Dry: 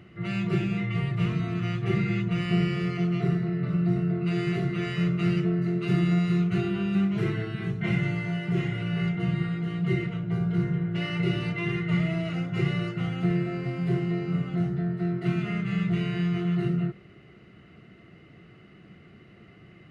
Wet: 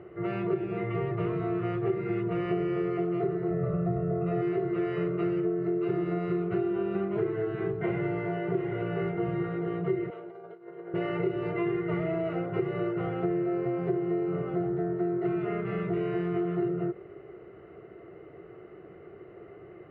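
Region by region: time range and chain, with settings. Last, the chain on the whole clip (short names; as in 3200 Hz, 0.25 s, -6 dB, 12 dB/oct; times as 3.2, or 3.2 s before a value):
3.51–4.42 tilt -2 dB/oct + comb 1.6 ms, depth 74%
10.1–10.94 HPF 620 Hz + bell 1500 Hz -8 dB 2.2 oct + negative-ratio compressor -49 dBFS, ratio -0.5
whole clip: LPF 1100 Hz 12 dB/oct; resonant low shelf 300 Hz -9 dB, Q 3; compressor, threshold -32 dBFS; gain +6.5 dB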